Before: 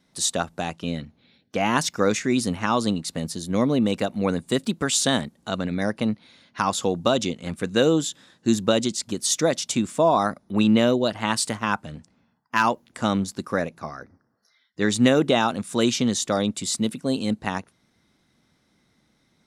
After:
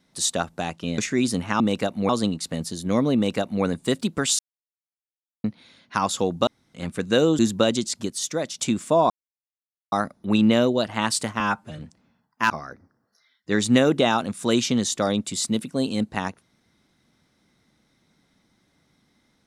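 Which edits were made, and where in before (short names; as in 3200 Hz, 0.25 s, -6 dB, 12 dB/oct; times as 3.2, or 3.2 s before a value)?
0.98–2.11 cut
3.79–4.28 copy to 2.73
5.03–6.08 mute
7.11–7.38 room tone
8.03–8.47 cut
9.18–9.67 gain -5.5 dB
10.18 insert silence 0.82 s
11.66–11.92 stretch 1.5×
12.63–13.8 cut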